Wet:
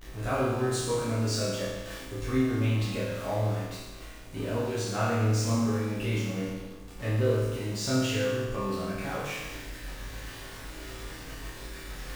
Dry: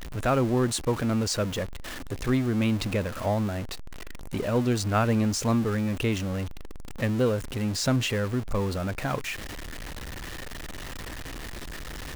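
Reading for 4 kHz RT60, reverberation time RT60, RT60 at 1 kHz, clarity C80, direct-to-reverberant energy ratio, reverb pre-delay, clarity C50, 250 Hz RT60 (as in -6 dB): 1.2 s, 1.2 s, 1.2 s, 2.0 dB, -10.0 dB, 7 ms, -1.0 dB, 1.2 s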